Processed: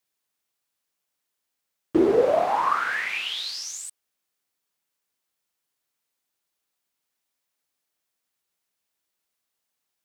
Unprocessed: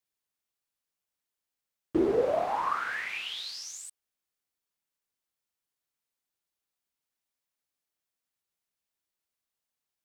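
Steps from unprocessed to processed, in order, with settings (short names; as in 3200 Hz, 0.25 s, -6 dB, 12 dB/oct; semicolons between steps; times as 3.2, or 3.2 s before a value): low shelf 93 Hz -9.5 dB; gain +7 dB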